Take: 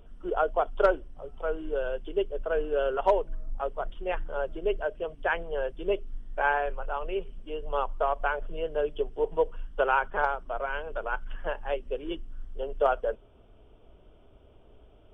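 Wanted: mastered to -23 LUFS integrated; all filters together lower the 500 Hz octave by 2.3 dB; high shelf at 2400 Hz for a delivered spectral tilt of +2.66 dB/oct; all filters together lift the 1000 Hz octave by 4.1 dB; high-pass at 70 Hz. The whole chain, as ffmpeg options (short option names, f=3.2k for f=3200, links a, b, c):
-af "highpass=70,equalizer=f=500:t=o:g=-5,equalizer=f=1k:t=o:g=8.5,highshelf=f=2.4k:g=-8,volume=6.5dB"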